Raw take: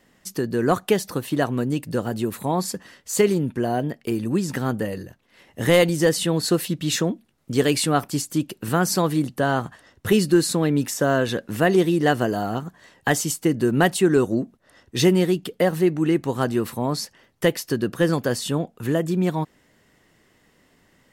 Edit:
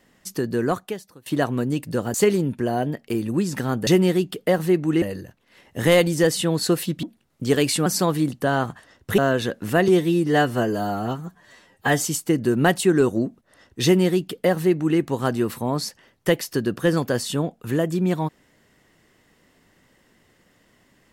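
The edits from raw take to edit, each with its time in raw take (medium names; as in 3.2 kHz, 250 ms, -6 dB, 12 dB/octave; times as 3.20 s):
0.58–1.26 s: fade out quadratic, to -23 dB
2.14–3.11 s: delete
6.85–7.11 s: delete
7.94–8.82 s: delete
10.14–11.05 s: delete
11.75–13.17 s: stretch 1.5×
15.00–16.15 s: copy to 4.84 s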